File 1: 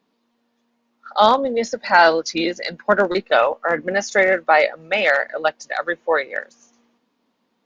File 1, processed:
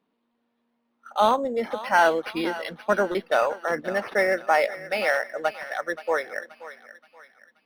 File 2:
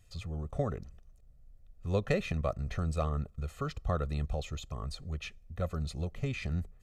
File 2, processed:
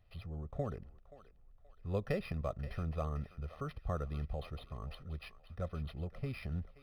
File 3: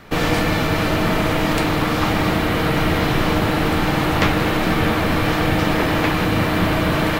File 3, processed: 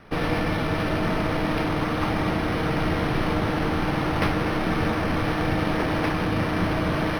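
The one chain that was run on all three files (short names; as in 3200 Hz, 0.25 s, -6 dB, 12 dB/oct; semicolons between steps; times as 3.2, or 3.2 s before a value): on a send: thinning echo 0.527 s, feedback 47%, high-pass 770 Hz, level -13 dB; on the sum: decimation joined by straight lines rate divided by 6×; gain -5.5 dB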